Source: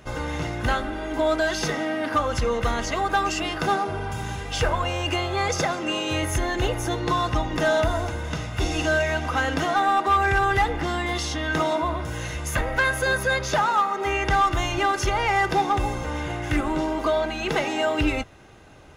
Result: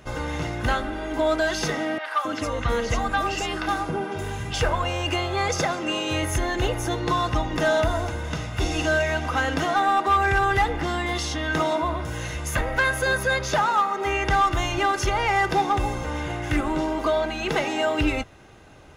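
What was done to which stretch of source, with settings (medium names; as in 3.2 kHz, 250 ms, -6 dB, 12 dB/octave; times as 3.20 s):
1.98–4.54 s: three bands offset in time mids, highs, lows 70/270 ms, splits 680/5200 Hz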